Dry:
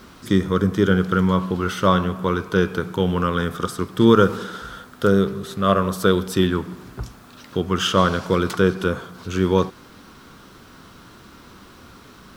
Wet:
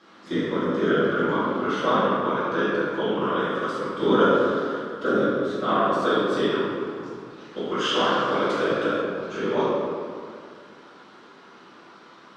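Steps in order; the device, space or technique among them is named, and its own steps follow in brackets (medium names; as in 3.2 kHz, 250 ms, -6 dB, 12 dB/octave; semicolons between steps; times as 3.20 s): whispering ghost (whisper effect; high-pass 350 Hz 12 dB/octave; reverberation RT60 2.2 s, pre-delay 3 ms, DRR -8.5 dB); 7.57–9.02 s: treble shelf 5.2 kHz +5.5 dB; distance through air 120 m; trim -9 dB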